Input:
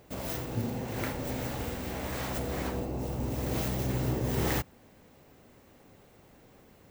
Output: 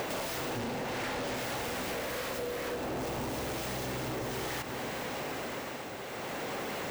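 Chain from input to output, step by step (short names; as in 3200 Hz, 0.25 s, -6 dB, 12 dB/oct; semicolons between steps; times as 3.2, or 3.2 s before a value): 0.59–1.36 median filter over 3 samples; tremolo 0.59 Hz, depth 79%; overdrive pedal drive 40 dB, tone 4500 Hz, clips at -19.5 dBFS; 1.91–2.77 thirty-one-band EQ 500 Hz +8 dB, 800 Hz -6 dB, 12500 Hz +4 dB; diffused feedback echo 0.503 s, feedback 44%, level -13 dB; compressor 6:1, threshold -34 dBFS, peak gain reduction 11 dB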